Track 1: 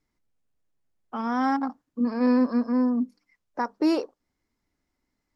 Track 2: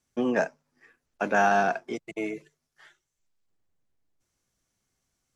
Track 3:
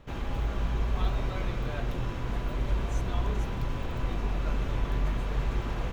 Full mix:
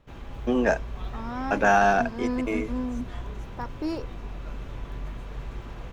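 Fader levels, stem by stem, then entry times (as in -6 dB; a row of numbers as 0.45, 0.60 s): -8.0, +2.5, -7.0 dB; 0.00, 0.30, 0.00 s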